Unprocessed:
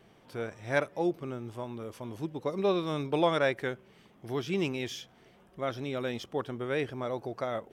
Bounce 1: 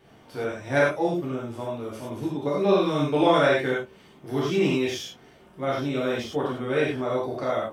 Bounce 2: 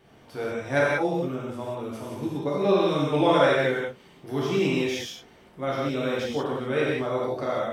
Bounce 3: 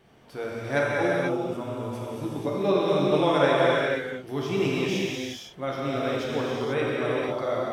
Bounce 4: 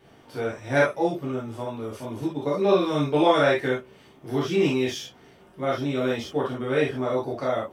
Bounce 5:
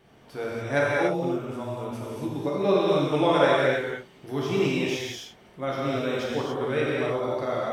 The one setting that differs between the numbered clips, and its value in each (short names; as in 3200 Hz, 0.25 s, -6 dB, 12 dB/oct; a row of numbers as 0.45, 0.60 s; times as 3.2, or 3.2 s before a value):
non-linear reverb, gate: 130, 210, 520, 90, 320 ms